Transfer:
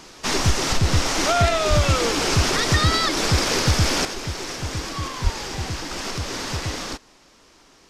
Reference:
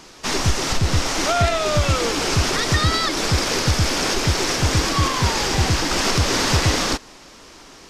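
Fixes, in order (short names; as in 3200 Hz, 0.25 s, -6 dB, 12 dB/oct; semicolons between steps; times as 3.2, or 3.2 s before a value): clip repair -8.5 dBFS; 1.69–1.81 HPF 140 Hz 24 dB/oct; 5.23–5.35 HPF 140 Hz 24 dB/oct; gain 0 dB, from 4.05 s +9.5 dB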